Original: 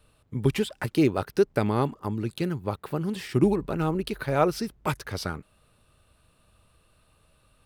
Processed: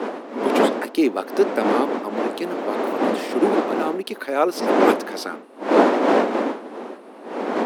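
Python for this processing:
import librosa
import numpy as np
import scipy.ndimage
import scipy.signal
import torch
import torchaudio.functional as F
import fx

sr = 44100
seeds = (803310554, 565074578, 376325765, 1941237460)

y = fx.dmg_wind(x, sr, seeds[0], corner_hz=550.0, level_db=-24.0)
y = scipy.signal.sosfilt(scipy.signal.butter(8, 230.0, 'highpass', fs=sr, output='sos'), y)
y = y * 10.0 ** (3.5 / 20.0)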